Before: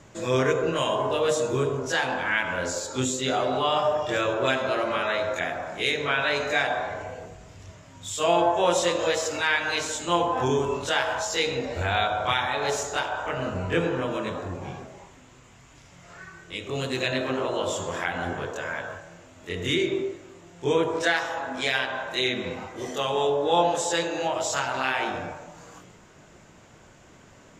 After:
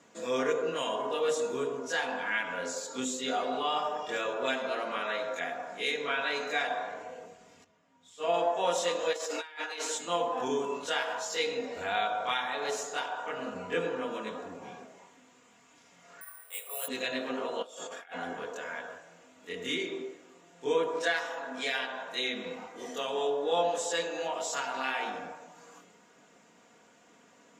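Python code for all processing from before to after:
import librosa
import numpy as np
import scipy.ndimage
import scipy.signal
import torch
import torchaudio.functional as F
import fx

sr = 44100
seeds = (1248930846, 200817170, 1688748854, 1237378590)

y = fx.chain(x, sr, fx.lowpass(hz=2800.0, slope=6),
    fx.upward_expand(threshold_db=-38.0, expansion=1.5), at=(7.64, 8.34))
y = fx.chain(y, sr, fx.brickwall_highpass(low_hz=260.0),
    fx.over_compress(threshold_db=-30.0, ratio=-0.5), at=(9.13, 9.98))
y = fx.chain(y, sr, fx.steep_highpass(hz=530.0, slope=36),
    fx.high_shelf(hz=2400.0, db=-6.5),
    fx.resample_bad(factor=4, down='filtered', up='zero_stuff'), at=(16.21, 16.88))
y = fx.chain(y, sr, fx.highpass(hz=590.0, slope=6),
    fx.over_compress(threshold_db=-36.0, ratio=-0.5),
    fx.notch_comb(f0_hz=1000.0), at=(17.62, 18.14))
y = scipy.signal.sosfilt(scipy.signal.butter(2, 230.0, 'highpass', fs=sr, output='sos'), y)
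y = y + 0.56 * np.pad(y, (int(4.2 * sr / 1000.0), 0))[:len(y)]
y = y * librosa.db_to_amplitude(-7.5)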